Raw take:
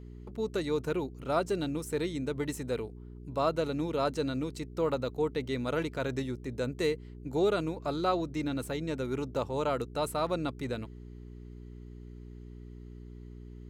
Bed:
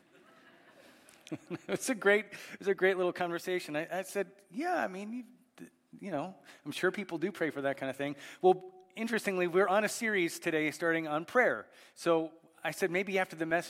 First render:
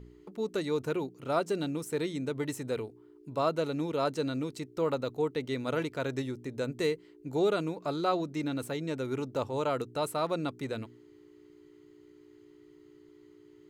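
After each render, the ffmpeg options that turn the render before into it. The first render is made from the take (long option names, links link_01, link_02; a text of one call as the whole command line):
ffmpeg -i in.wav -af "bandreject=frequency=60:width_type=h:width=4,bandreject=frequency=120:width_type=h:width=4,bandreject=frequency=180:width_type=h:width=4,bandreject=frequency=240:width_type=h:width=4" out.wav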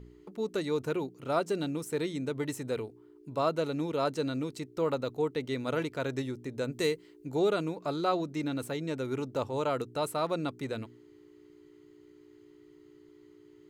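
ffmpeg -i in.wav -filter_complex "[0:a]asettb=1/sr,asplit=3[link_01][link_02][link_03];[link_01]atrim=end=6.734[link_04];[link_02]atrim=start=6.73:end=7.27,asetpts=PTS-STARTPTS,afade=type=in:duration=0.004:curve=qsin,afade=type=out:start_time=0.536:duration=0.004:curve=qsin,highshelf=frequency=3900:gain=6.5[link_05];[link_03]atrim=start=7.266[link_06];[link_04][link_05]acrossfade=duration=0.004:curve1=hsin:curve2=qsin[link_07];[link_07][link_06]acrossfade=duration=0.004:curve1=qsin:curve2=hsin" out.wav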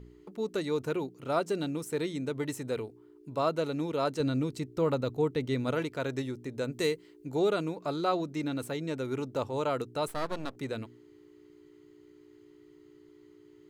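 ffmpeg -i in.wav -filter_complex "[0:a]asettb=1/sr,asplit=3[link_01][link_02][link_03];[link_01]atrim=end=4.204[link_04];[link_02]atrim=start=4.2:end=5.72,asetpts=PTS-STARTPTS,afade=type=in:duration=0.004:curve=qsin,afade=type=out:start_time=1.516:duration=0.004:curve=qsin,lowshelf=frequency=190:gain=10[link_05];[link_03]atrim=start=5.716[link_06];[link_04][link_05]acrossfade=duration=0.004:curve1=hsin:curve2=qsin[link_07];[link_07][link_06]acrossfade=duration=0.004:curve1=qsin:curve2=hsin,asplit=3[link_08][link_09][link_10];[link_08]afade=type=out:start_time=10.07:duration=0.02[link_11];[link_09]aeval=exprs='max(val(0),0)':channel_layout=same,afade=type=in:start_time=10.07:duration=0.02,afade=type=out:start_time=10.55:duration=0.02[link_12];[link_10]afade=type=in:start_time=10.55:duration=0.02[link_13];[link_11][link_12][link_13]amix=inputs=3:normalize=0" out.wav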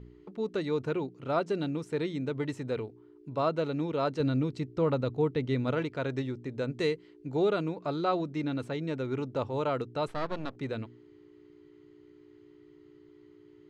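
ffmpeg -i in.wav -af "lowpass=4200,equalizer=frequency=120:width=0.91:gain=3" out.wav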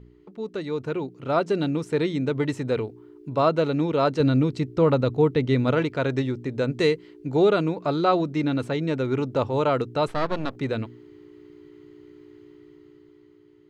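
ffmpeg -i in.wav -af "dynaudnorm=framelen=260:gausssize=9:maxgain=8dB" out.wav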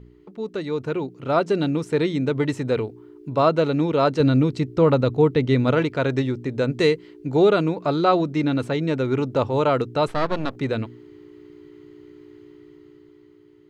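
ffmpeg -i in.wav -af "volume=2.5dB" out.wav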